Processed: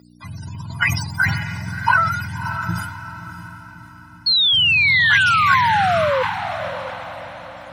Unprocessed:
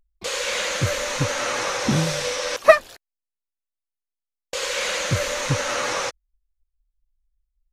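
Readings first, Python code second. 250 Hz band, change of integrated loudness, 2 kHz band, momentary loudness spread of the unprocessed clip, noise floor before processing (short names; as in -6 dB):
-2.0 dB, +6.0 dB, +9.5 dB, 10 LU, under -85 dBFS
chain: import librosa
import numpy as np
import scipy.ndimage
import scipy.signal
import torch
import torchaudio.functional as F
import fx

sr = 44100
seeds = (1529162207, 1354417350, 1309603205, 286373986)

p1 = fx.octave_mirror(x, sr, pivot_hz=460.0)
p2 = scipy.signal.sosfilt(scipy.signal.ellip(3, 1.0, 40, [260.0, 730.0], 'bandstop', fs=sr, output='sos'), p1)
p3 = fx.dynamic_eq(p2, sr, hz=5200.0, q=1.7, threshold_db=-56.0, ratio=4.0, max_db=5)
p4 = p3 + 0.96 * np.pad(p3, (int(2.0 * sr / 1000.0), 0))[:len(p3)]
p5 = fx.over_compress(p4, sr, threshold_db=-23.0, ratio=-0.5)
p6 = p4 + F.gain(torch.from_numpy(p5), -0.5).numpy()
p7 = fx.spec_paint(p6, sr, seeds[0], shape='fall', start_s=4.26, length_s=1.97, low_hz=500.0, high_hz=4400.0, level_db=-20.0)
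p8 = fx.add_hum(p7, sr, base_hz=60, snr_db=18)
p9 = fx.weighting(p8, sr, curve='A')
p10 = p9 + fx.echo_diffused(p9, sr, ms=615, feedback_pct=44, wet_db=-9.5, dry=0)
p11 = fx.sustainer(p10, sr, db_per_s=54.0)
y = F.gain(torch.from_numpy(p11), 3.5).numpy()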